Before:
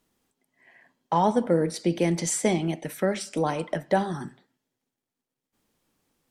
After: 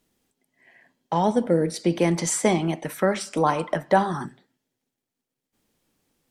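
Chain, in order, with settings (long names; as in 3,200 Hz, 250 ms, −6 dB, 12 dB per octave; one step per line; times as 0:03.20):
parametric band 1,100 Hz −5 dB 0.87 octaves, from 0:01.85 +8.5 dB, from 0:04.26 −3.5 dB
level +2 dB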